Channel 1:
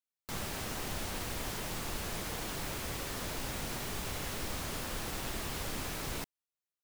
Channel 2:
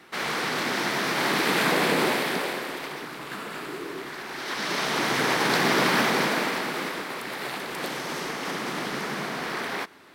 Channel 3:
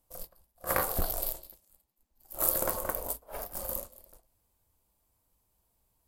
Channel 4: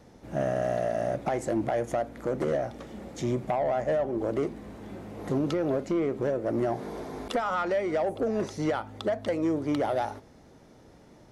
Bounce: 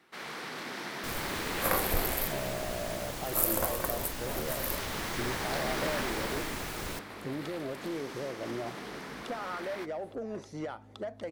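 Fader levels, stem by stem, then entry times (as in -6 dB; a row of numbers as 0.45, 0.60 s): -1.0, -12.5, -0.5, -10.0 dB; 0.75, 0.00, 0.95, 1.95 s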